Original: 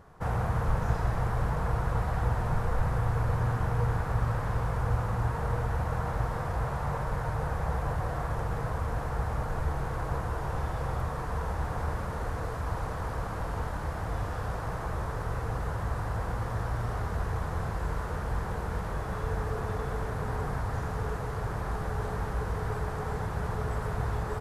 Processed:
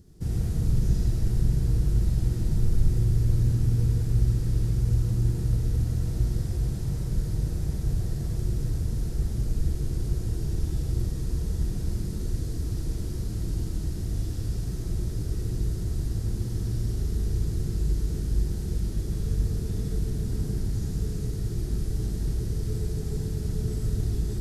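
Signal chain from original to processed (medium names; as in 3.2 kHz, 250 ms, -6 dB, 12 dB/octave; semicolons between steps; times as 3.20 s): FFT filter 360 Hz 0 dB, 540 Hz -21 dB, 1.1 kHz -30 dB, 4.9 kHz +2 dB; algorithmic reverb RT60 0.61 s, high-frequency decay 0.6×, pre-delay 35 ms, DRR 0.5 dB; trim +3.5 dB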